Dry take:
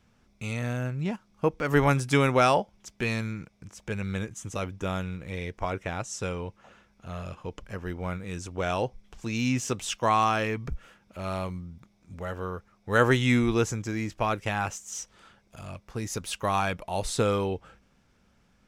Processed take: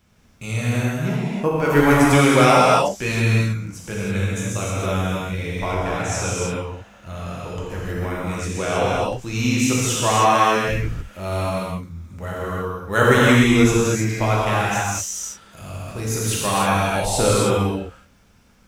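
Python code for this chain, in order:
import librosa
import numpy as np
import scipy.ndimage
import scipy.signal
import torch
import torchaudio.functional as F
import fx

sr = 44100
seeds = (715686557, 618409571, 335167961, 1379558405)

y = fx.high_shelf(x, sr, hz=10000.0, db=11.5)
y = fx.rev_gated(y, sr, seeds[0], gate_ms=350, shape='flat', drr_db=-6.5)
y = y * librosa.db_to_amplitude(1.5)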